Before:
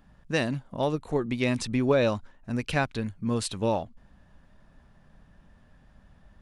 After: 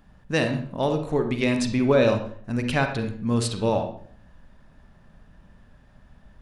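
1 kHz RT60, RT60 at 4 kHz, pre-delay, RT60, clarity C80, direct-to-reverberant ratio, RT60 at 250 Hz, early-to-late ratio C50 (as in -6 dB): 0.50 s, 0.40 s, 37 ms, 0.55 s, 11.0 dB, 5.5 dB, 0.65 s, 7.5 dB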